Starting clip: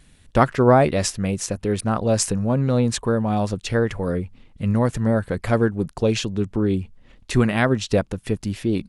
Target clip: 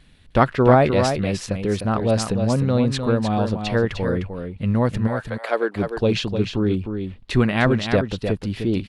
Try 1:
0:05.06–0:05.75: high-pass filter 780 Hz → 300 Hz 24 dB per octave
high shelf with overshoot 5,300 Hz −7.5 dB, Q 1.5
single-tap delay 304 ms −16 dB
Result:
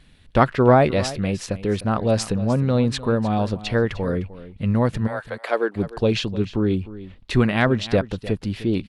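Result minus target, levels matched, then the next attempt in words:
echo-to-direct −9 dB
0:05.06–0:05.75: high-pass filter 780 Hz → 300 Hz 24 dB per octave
high shelf with overshoot 5,300 Hz −7.5 dB, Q 1.5
single-tap delay 304 ms −7 dB

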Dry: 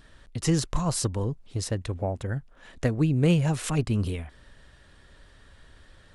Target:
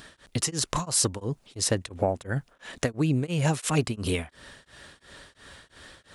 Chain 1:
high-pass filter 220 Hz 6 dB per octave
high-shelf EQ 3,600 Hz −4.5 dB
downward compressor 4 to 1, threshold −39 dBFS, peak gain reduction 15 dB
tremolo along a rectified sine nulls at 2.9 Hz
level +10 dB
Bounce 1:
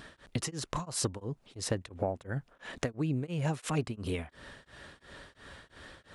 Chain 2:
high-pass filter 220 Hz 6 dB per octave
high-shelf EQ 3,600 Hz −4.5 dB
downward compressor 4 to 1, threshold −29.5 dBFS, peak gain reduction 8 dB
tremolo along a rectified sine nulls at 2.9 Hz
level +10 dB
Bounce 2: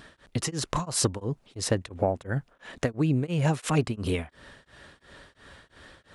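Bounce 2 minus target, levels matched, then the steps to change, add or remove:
8,000 Hz band −3.5 dB
change: high-shelf EQ 3,600 Hz +5 dB

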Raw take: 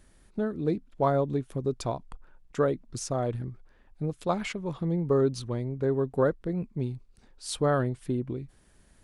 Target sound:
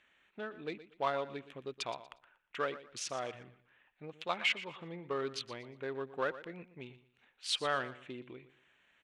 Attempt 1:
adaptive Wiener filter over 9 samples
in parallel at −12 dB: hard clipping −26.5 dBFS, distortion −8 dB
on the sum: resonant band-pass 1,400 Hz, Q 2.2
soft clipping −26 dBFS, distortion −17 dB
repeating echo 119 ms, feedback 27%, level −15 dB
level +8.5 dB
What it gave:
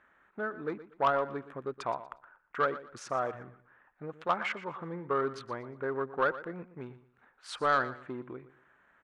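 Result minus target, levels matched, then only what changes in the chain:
hard clipping: distortion +24 dB; 1,000 Hz band +3.5 dB
change: hard clipping −16 dBFS, distortion −32 dB
change: resonant band-pass 2,800 Hz, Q 2.2

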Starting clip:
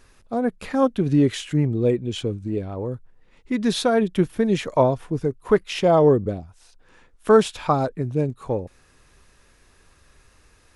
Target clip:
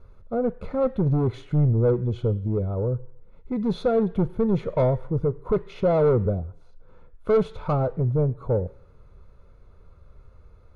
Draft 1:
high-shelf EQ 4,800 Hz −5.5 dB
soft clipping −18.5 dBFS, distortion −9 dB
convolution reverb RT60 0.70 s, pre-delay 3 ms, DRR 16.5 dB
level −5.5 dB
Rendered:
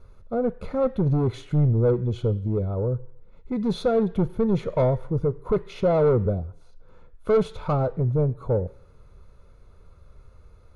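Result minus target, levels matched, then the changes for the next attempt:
8,000 Hz band +7.5 dB
change: high-shelf EQ 4,800 Hz −17 dB

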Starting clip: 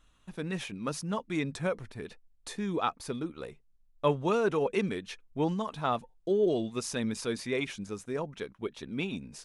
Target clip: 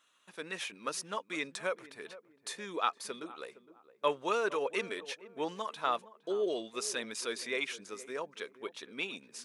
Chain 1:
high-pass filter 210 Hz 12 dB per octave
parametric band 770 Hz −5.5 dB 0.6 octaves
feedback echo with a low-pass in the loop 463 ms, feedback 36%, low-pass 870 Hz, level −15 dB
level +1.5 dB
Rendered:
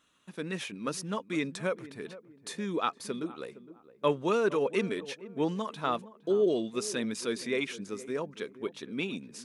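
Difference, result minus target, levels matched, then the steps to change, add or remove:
250 Hz band +7.0 dB
change: high-pass filter 570 Hz 12 dB per octave

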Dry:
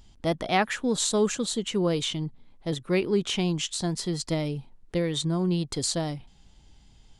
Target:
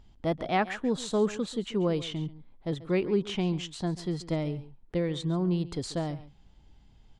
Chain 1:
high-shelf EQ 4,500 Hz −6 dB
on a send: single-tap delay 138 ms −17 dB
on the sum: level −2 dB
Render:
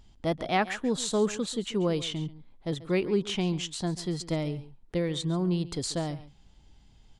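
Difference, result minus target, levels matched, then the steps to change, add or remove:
8,000 Hz band +7.0 dB
change: high-shelf EQ 4,500 Hz −16.5 dB

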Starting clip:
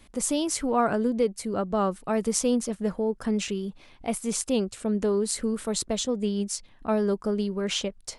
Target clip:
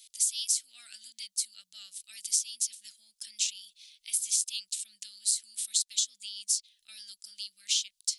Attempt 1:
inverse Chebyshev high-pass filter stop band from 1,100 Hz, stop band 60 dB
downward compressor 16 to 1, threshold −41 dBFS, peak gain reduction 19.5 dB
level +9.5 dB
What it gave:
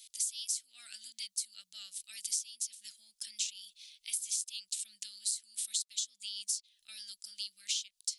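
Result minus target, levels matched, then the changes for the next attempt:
downward compressor: peak gain reduction +7.5 dB
change: downward compressor 16 to 1, threshold −33 dBFS, peak gain reduction 12 dB

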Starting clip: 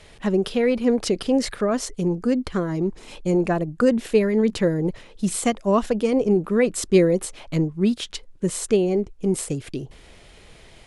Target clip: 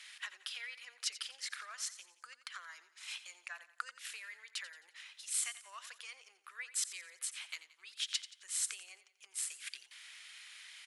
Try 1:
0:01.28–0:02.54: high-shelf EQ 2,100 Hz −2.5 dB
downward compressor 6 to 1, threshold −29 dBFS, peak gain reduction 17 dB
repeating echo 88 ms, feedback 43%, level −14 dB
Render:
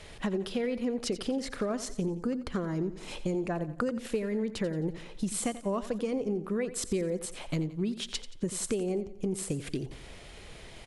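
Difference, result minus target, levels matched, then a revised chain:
2,000 Hz band −7.5 dB
0:01.28–0:02.54: high-shelf EQ 2,100 Hz −2.5 dB
downward compressor 6 to 1, threshold −29 dBFS, peak gain reduction 17 dB
high-pass filter 1,500 Hz 24 dB per octave
repeating echo 88 ms, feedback 43%, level −14 dB

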